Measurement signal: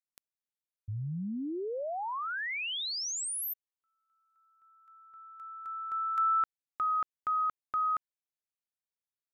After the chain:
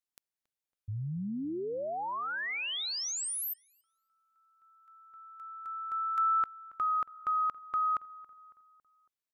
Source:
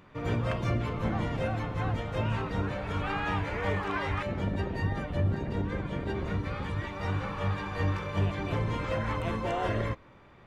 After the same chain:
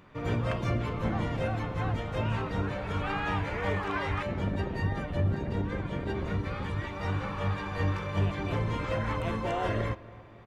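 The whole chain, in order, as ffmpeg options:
-filter_complex "[0:a]asplit=2[a][b];[b]adelay=277,lowpass=f=2.2k:p=1,volume=-19.5dB,asplit=2[c][d];[d]adelay=277,lowpass=f=2.2k:p=1,volume=0.55,asplit=2[e][f];[f]adelay=277,lowpass=f=2.2k:p=1,volume=0.55,asplit=2[g][h];[h]adelay=277,lowpass=f=2.2k:p=1,volume=0.55[i];[a][c][e][g][i]amix=inputs=5:normalize=0"

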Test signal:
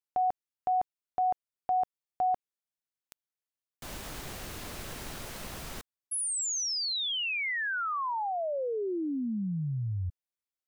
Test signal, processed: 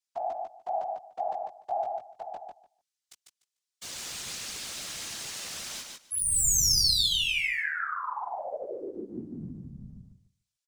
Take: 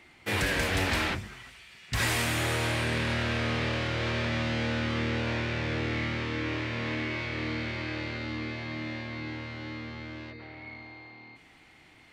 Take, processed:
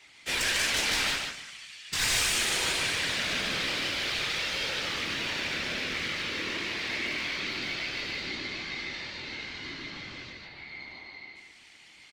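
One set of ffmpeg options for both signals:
-filter_complex "[0:a]highpass=f=69:w=0.5412,highpass=f=69:w=1.3066,highshelf=f=3.3k:g=4,acrossover=split=160|7600[a][b][c];[a]acompressor=threshold=-47dB:ratio=6:release=463[d];[b]crystalizer=i=8.5:c=0[e];[d][e][c]amix=inputs=3:normalize=0,aeval=exprs='clip(val(0),-1,0.112)':c=same,flanger=delay=15:depth=4.5:speed=0.22,afftfilt=real='hypot(re,im)*cos(2*PI*random(0))':imag='hypot(re,im)*sin(2*PI*random(1))':win_size=512:overlap=0.75,asplit=2[f][g];[g]aecho=0:1:148|296|444:0.631|0.101|0.0162[h];[f][h]amix=inputs=2:normalize=0"

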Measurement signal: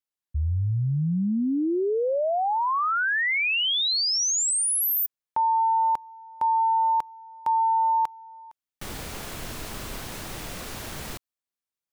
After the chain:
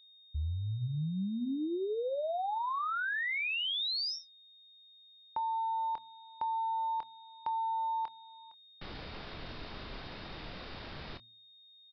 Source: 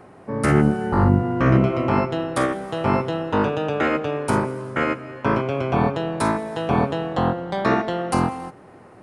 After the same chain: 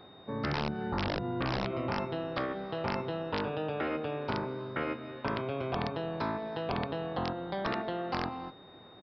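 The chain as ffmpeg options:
-filter_complex "[0:a]aeval=exprs='val(0)+0.00316*sin(2*PI*3700*n/s)':c=same,asplit=2[a][b];[b]adelay=26,volume=-12.5dB[c];[a][c]amix=inputs=2:normalize=0,aresample=11025,aeval=exprs='(mod(2.82*val(0)+1,2)-1)/2.82':c=same,aresample=44100,bandreject=f=114.9:t=h:w=4,bandreject=f=229.8:t=h:w=4,acompressor=threshold=-23dB:ratio=6:attack=30:release=111:knee=6,volume=-8dB"

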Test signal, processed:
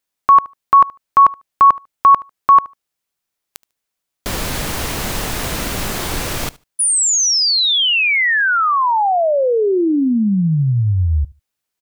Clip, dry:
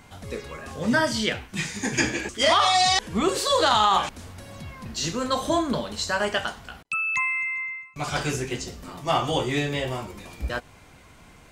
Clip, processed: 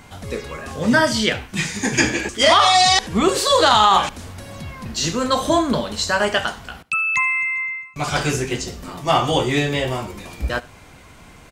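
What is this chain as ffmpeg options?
-af "aecho=1:1:74|148:0.0794|0.0127,volume=6dB"

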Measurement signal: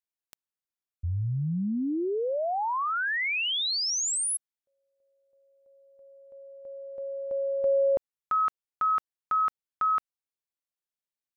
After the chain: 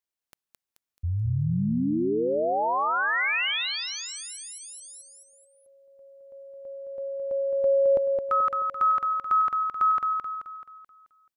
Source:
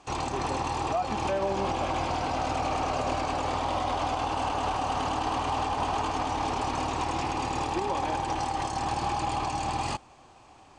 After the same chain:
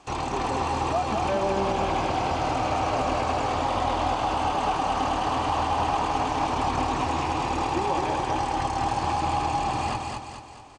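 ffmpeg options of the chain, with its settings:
-filter_complex "[0:a]aecho=1:1:216|432|648|864|1080|1296:0.596|0.268|0.121|0.0543|0.0244|0.011,acrossover=split=3300[a][b];[b]acompressor=threshold=-42dB:ratio=4:attack=1:release=60[c];[a][c]amix=inputs=2:normalize=0,volume=2dB"

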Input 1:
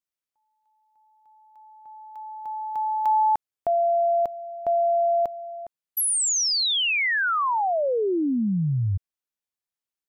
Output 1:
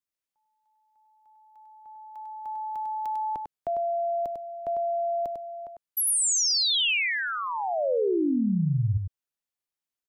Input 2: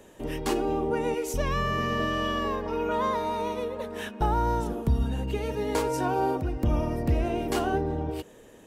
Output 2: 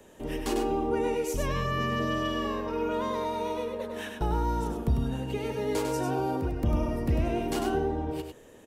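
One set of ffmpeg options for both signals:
-filter_complex "[0:a]acrossover=split=370|550|2300[a][b][c][d];[c]alimiter=level_in=5.5dB:limit=-24dB:level=0:latency=1,volume=-5.5dB[e];[a][b][e][d]amix=inputs=4:normalize=0,aecho=1:1:99:0.531,volume=-2dB"

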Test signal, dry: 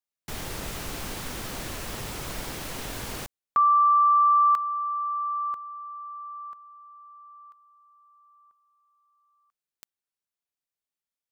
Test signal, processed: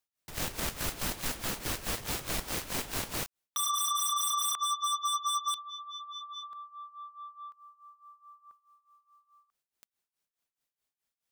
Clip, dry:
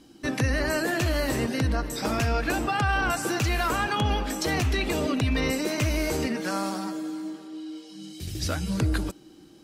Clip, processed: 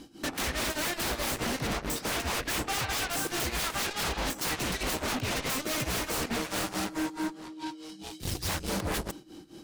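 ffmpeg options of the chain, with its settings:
-af "tremolo=f=4.7:d=0.86,aeval=exprs='0.0299*(abs(mod(val(0)/0.0299+3,4)-2)-1)':c=same,aeval=exprs='0.0316*(cos(1*acos(clip(val(0)/0.0316,-1,1)))-cos(1*PI/2))+0.0112*(cos(3*acos(clip(val(0)/0.0316,-1,1)))-cos(3*PI/2))+0.00447*(cos(7*acos(clip(val(0)/0.0316,-1,1)))-cos(7*PI/2))':c=same,volume=7dB"

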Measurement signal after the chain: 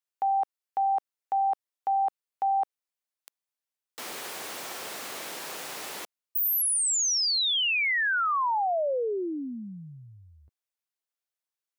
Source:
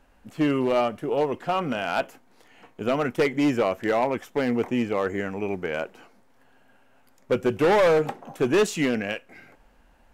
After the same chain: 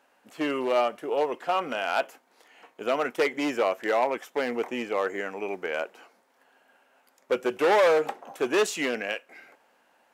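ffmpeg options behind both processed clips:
-af "highpass=420"

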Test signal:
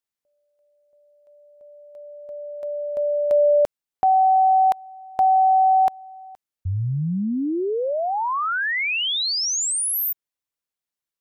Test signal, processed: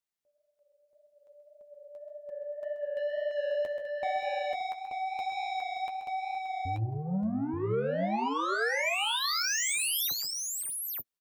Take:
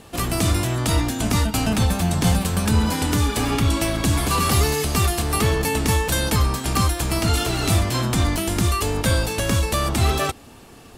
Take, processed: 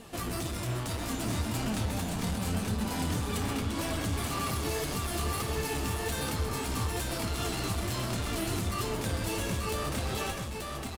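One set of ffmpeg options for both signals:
-filter_complex "[0:a]alimiter=limit=-17dB:level=0:latency=1:release=128,asoftclip=type=tanh:threshold=-26.5dB,flanger=delay=4.2:depth=7.6:regen=32:speed=1.8:shape=sinusoidal,asplit=2[a][b];[b]aecho=0:1:64|131|151|576|882:0.119|0.335|0.15|0.266|0.668[c];[a][c]amix=inputs=2:normalize=0"

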